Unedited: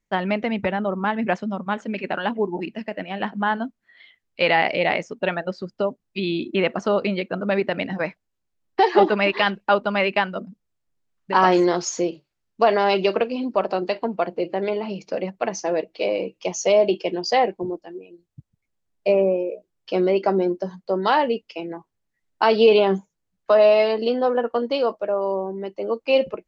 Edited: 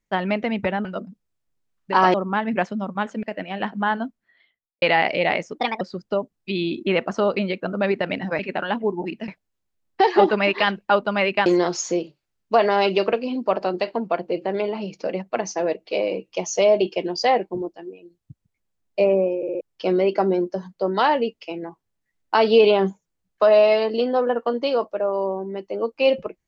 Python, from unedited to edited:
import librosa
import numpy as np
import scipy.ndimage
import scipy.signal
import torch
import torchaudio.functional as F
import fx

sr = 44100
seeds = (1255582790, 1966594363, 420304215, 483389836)

y = fx.studio_fade_out(x, sr, start_s=3.58, length_s=0.84)
y = fx.edit(y, sr, fx.move(start_s=1.94, length_s=0.89, to_s=8.07),
    fx.speed_span(start_s=5.15, length_s=0.34, speed=1.31),
    fx.move(start_s=10.25, length_s=1.29, to_s=0.85),
    fx.stutter_over(start_s=19.45, slice_s=0.06, count=4), tone=tone)